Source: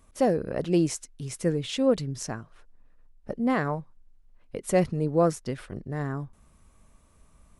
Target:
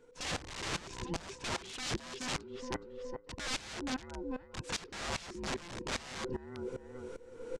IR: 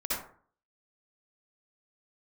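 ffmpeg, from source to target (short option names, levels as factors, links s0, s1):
-filter_complex "[0:a]afftfilt=real='real(if(between(b,1,1008),(2*floor((b-1)/24)+1)*24-b,b),0)':imag='imag(if(between(b,1,1008),(2*floor((b-1)/24)+1)*24-b,b),0)*if(between(b,1,1008),-1,1)':win_size=2048:overlap=0.75,highshelf=f=5600:g=-10.5,acrossover=split=92|4900[s0][s1][s2];[s0]acompressor=threshold=0.02:ratio=4[s3];[s1]acompressor=threshold=0.0501:ratio=4[s4];[s2]acompressor=threshold=0.00112:ratio=4[s5];[s3][s4][s5]amix=inputs=3:normalize=0,aecho=1:1:421|842|1263:0.316|0.0696|0.0153,asplit=2[s6][s7];[s7]alimiter=level_in=1.12:limit=0.0631:level=0:latency=1:release=75,volume=0.891,volume=1.33[s8];[s6][s8]amix=inputs=2:normalize=0,aeval=exprs='(mod(16.8*val(0)+1,2)-1)/16.8':c=same,areverse,acompressor=threshold=0.01:ratio=10,areverse,lowpass=f=7800:w=0.5412,lowpass=f=7800:w=1.3066,equalizer=f=870:w=0.31:g=-5,aeval=exprs='val(0)*pow(10,-19*if(lt(mod(-2.5*n/s,1),2*abs(-2.5)/1000),1-mod(-2.5*n/s,1)/(2*abs(-2.5)/1000),(mod(-2.5*n/s,1)-2*abs(-2.5)/1000)/(1-2*abs(-2.5)/1000))/20)':c=same,volume=3.98"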